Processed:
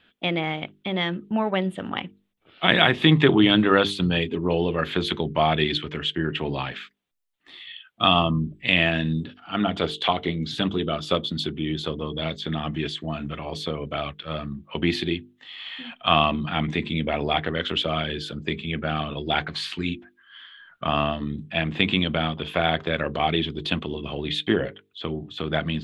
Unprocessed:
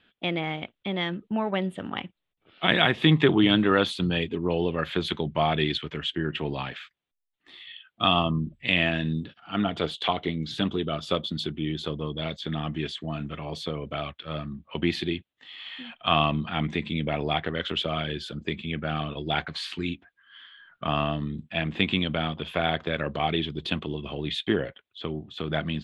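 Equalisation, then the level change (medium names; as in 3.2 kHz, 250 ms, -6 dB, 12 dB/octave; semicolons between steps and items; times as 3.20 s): hum notches 50/100/150/200/250/300/350/400/450 Hz; +3.5 dB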